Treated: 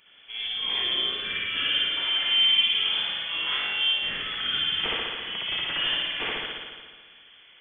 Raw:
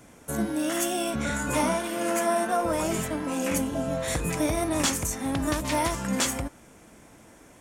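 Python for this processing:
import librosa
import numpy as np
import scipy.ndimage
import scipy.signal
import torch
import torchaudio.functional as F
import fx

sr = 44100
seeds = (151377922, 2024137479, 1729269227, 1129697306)

y = scipy.signal.sosfilt(scipy.signal.cheby1(8, 1.0, 340.0, 'highpass', fs=sr, output='sos'), x)
y = fx.room_flutter(y, sr, wall_m=3.6, rt60_s=0.43, at=(3.23, 3.93))
y = fx.mod_noise(y, sr, seeds[0], snr_db=30)
y = fx.rev_spring(y, sr, rt60_s=1.6, pass_ms=(54,), chirp_ms=20, drr_db=-5.5)
y = fx.freq_invert(y, sr, carrier_hz=3800)
y = fx.peak_eq(y, sr, hz=870.0, db=-13.0, octaves=0.41, at=(0.82, 1.97))
y = y * 10.0 ** (-3.5 / 20.0)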